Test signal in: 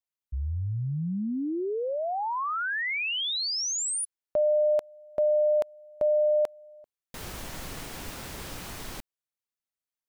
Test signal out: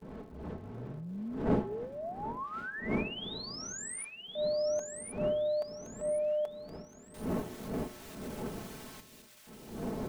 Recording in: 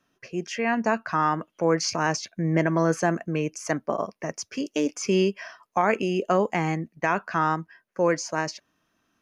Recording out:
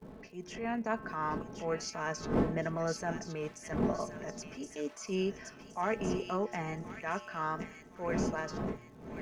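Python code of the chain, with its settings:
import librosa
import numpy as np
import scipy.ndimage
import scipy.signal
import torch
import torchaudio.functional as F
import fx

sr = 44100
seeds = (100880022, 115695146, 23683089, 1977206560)

y = fx.dmg_wind(x, sr, seeds[0], corner_hz=310.0, level_db=-27.0)
y = fx.gate_hold(y, sr, open_db=-30.0, close_db=-40.0, hold_ms=234.0, range_db=-21, attack_ms=6.3, release_ms=156.0)
y = fx.low_shelf(y, sr, hz=72.0, db=-11.5)
y = y + 0.49 * np.pad(y, (int(4.6 * sr / 1000.0), 0))[:len(y)]
y = fx.dynamic_eq(y, sr, hz=4500.0, q=0.8, threshold_db=-42.0, ratio=4.0, max_db=-4)
y = fx.transient(y, sr, attack_db=-8, sustain_db=-2)
y = fx.dmg_crackle(y, sr, seeds[1], per_s=160.0, level_db=-48.0)
y = fx.comb_fb(y, sr, f0_hz=120.0, decay_s=1.2, harmonics='odd', damping=0.2, mix_pct=70)
y = fx.echo_wet_highpass(y, sr, ms=1070, feedback_pct=39, hz=2300.0, wet_db=-4)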